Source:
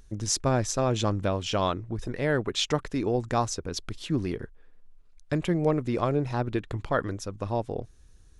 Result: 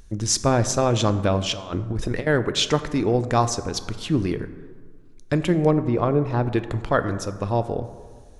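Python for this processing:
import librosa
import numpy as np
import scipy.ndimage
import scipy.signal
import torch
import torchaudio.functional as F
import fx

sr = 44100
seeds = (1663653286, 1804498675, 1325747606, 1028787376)

y = fx.over_compress(x, sr, threshold_db=-32.0, ratio=-0.5, at=(1.49, 2.27))
y = fx.lowpass(y, sr, hz=fx.line((5.7, 1000.0), (6.41, 2000.0)), slope=6, at=(5.7, 6.41), fade=0.02)
y = fx.rev_plate(y, sr, seeds[0], rt60_s=1.7, hf_ratio=0.4, predelay_ms=0, drr_db=11.0)
y = F.gain(torch.from_numpy(y), 5.5).numpy()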